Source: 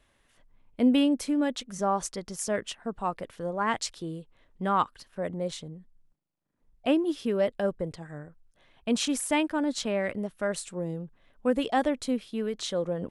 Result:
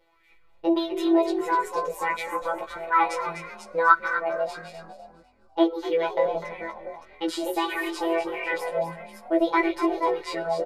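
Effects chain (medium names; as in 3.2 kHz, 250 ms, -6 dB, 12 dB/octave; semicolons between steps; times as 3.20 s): chunks repeated in reverse 377 ms, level -7 dB; robot voice 135 Hz; comb 2.6 ms, depth 56%; small resonant body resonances 300/910/1700 Hz, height 6 dB, ringing for 25 ms; on a send at -17 dB: reverberation, pre-delay 3 ms; on the sum: chorus 0.59 Hz, delay 18 ms, depth 3 ms; tone controls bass -4 dB, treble -10 dB; frequency-shifting echo 307 ms, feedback 32%, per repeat +34 Hz, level -10 dB; tape speed +23%; sweeping bell 1.6 Hz 560–2400 Hz +12 dB; trim +3 dB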